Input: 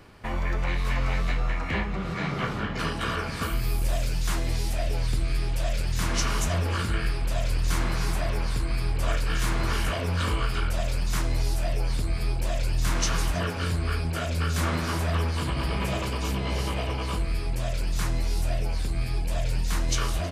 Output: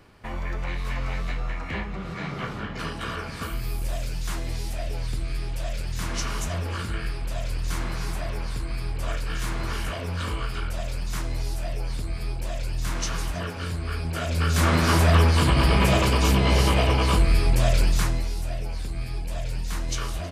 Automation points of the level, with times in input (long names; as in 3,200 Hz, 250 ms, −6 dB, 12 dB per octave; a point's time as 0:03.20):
0:13.86 −3 dB
0:14.93 +8.5 dB
0:17.82 +8.5 dB
0:18.35 −3 dB